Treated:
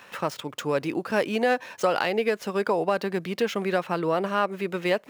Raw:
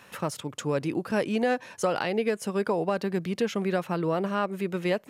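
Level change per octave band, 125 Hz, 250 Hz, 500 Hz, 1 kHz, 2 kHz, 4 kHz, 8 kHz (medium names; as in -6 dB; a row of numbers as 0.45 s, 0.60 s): -2.5 dB, -1.0 dB, +2.5 dB, +4.0 dB, +4.5 dB, +4.0 dB, -2.0 dB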